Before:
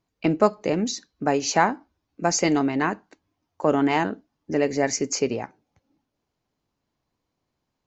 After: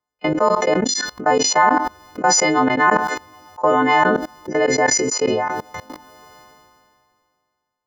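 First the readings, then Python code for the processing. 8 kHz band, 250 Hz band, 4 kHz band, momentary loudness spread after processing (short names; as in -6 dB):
n/a, +2.0 dB, +8.5 dB, 10 LU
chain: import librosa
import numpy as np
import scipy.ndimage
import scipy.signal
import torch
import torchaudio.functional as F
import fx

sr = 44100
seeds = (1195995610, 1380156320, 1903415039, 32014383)

y = fx.freq_snap(x, sr, grid_st=3)
y = fx.high_shelf(y, sr, hz=5400.0, db=-5.0)
y = fx.notch(y, sr, hz=2500.0, q=29.0)
y = fx.level_steps(y, sr, step_db=23)
y = fx.graphic_eq_10(y, sr, hz=(500, 1000, 2000), db=(6, 11, 5))
y = fx.sustainer(y, sr, db_per_s=26.0)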